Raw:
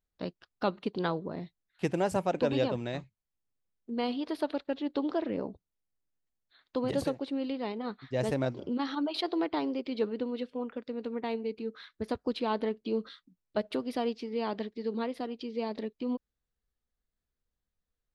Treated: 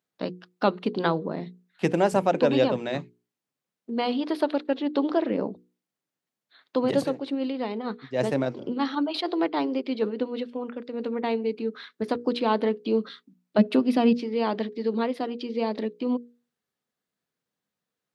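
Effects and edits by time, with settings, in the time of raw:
6.99–10.94 tremolo 6.5 Hz, depth 42%
13.58–14.13 small resonant body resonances 210/2600 Hz, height 12 dB
whole clip: HPF 140 Hz 24 dB/oct; high shelf 6100 Hz -5.5 dB; notches 60/120/180/240/300/360/420/480 Hz; gain +7.5 dB

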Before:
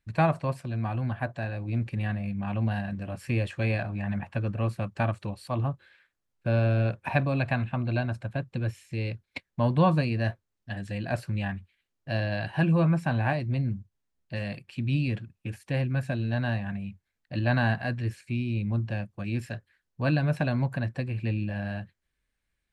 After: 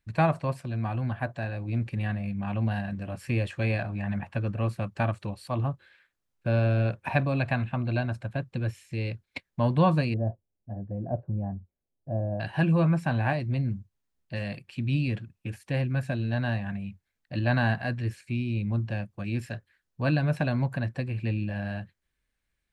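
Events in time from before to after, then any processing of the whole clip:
10.14–12.4 Chebyshev low-pass 700 Hz, order 3

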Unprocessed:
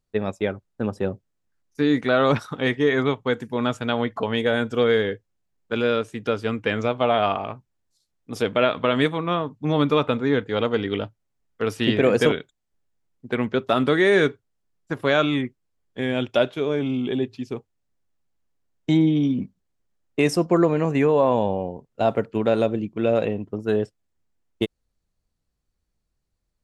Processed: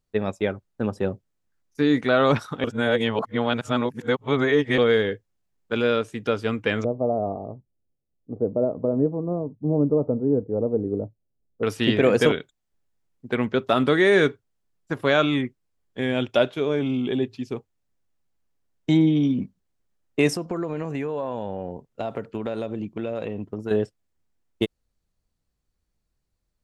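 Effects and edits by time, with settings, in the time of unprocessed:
2.64–4.78 reverse
6.84–11.63 inverse Chebyshev low-pass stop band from 3600 Hz, stop band 80 dB
20.33–23.71 compressor 5:1, threshold -25 dBFS

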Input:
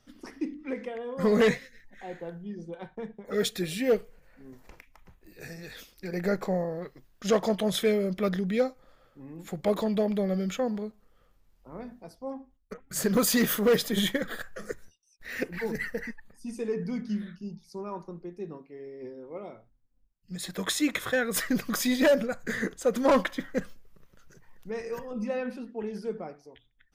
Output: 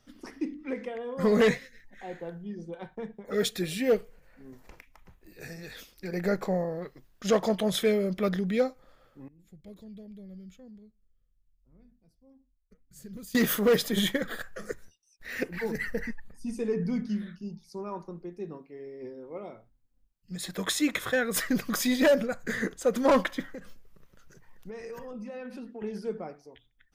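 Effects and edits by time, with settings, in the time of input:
9.28–13.35 passive tone stack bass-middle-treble 10-0-1
15.88–17.07 low shelf 160 Hz +9 dB
23.54–25.82 compressor 16:1, threshold -36 dBFS

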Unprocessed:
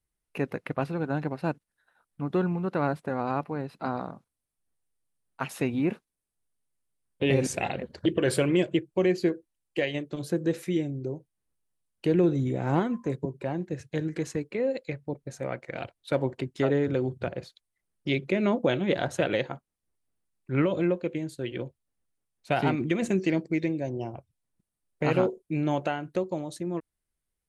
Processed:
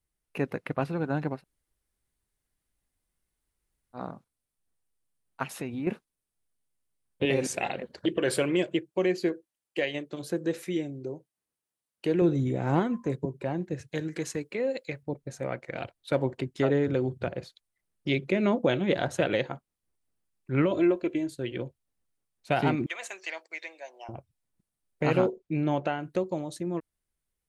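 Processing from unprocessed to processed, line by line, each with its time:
1.39–3.98 room tone, crossfade 0.10 s
5.43–5.87 compressor 2:1, threshold -36 dBFS
7.25–12.22 HPF 290 Hz 6 dB/oct
13.88–15.03 tilt +1.5 dB/oct
20.71–21.3 comb 3 ms
22.86–24.09 HPF 750 Hz 24 dB/oct
25.3–25.99 air absorption 93 m

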